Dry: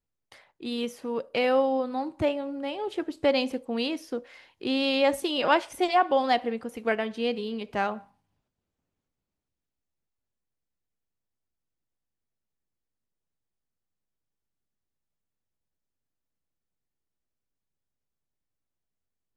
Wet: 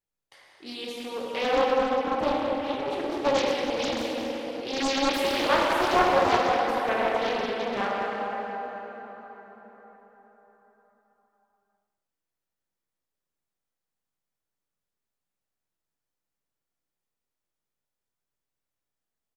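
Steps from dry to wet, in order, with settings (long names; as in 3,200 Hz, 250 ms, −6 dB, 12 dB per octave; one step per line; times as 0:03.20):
low-shelf EQ 300 Hz −9.5 dB
far-end echo of a speakerphone 200 ms, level −12 dB
dense smooth reverb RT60 4.9 s, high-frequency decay 0.55×, DRR −5.5 dB
highs frequency-modulated by the lows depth 0.62 ms
level −3 dB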